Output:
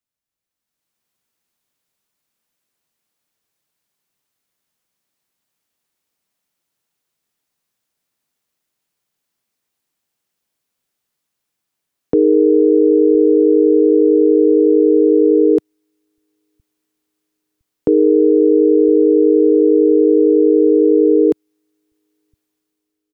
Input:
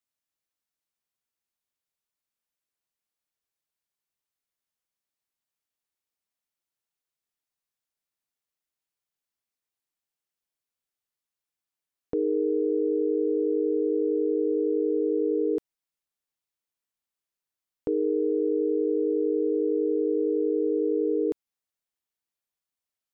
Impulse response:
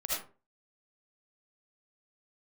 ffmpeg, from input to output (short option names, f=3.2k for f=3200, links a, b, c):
-filter_complex "[0:a]lowshelf=f=270:g=8.5,acrossover=split=120[a][b];[a]aecho=1:1:1011|2022|3033|4044:0.376|0.12|0.0385|0.0123[c];[b]dynaudnorm=f=220:g=7:m=12.5dB[d];[c][d]amix=inputs=2:normalize=0"